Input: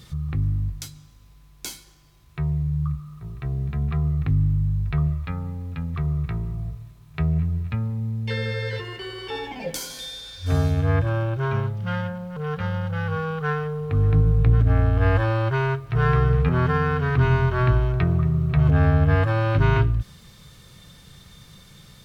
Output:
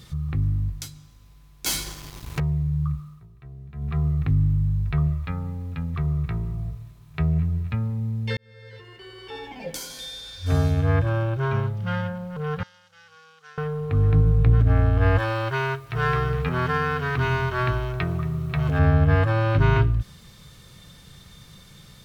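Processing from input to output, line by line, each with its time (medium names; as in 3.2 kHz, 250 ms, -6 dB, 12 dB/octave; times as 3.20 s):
1.66–2.40 s: waveshaping leveller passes 5
3.00–3.99 s: dip -14.5 dB, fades 0.27 s
8.37–10.33 s: fade in
12.63–13.58 s: band-pass filter 6.2 kHz, Q 2
15.18–18.79 s: tilt EQ +2 dB/octave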